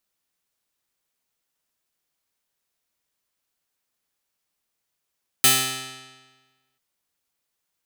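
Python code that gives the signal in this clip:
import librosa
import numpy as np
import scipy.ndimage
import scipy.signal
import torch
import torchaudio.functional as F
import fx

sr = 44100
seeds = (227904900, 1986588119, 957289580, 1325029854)

y = fx.pluck(sr, length_s=1.34, note=48, decay_s=1.35, pick=0.24, brightness='bright')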